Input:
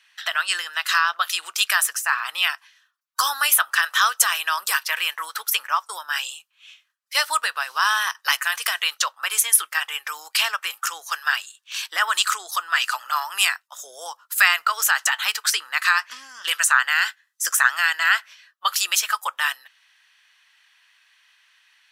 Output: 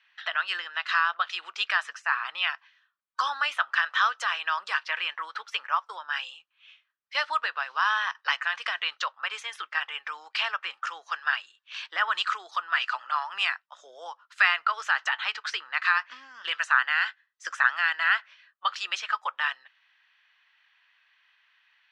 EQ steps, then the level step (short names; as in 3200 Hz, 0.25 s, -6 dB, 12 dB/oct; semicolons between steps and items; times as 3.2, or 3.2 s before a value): LPF 3600 Hz 12 dB/oct; air absorption 100 m; -3.5 dB